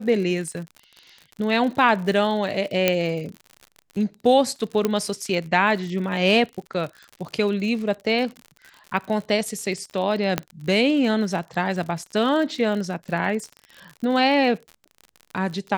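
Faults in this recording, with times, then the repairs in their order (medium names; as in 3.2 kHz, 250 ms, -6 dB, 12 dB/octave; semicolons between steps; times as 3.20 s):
crackle 56 per s -31 dBFS
2.88 s: pop -3 dBFS
4.85 s: pop -8 dBFS
10.38 s: pop -6 dBFS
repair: de-click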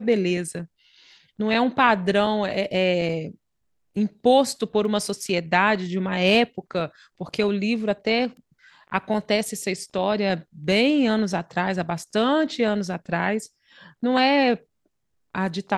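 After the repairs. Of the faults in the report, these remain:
4.85 s: pop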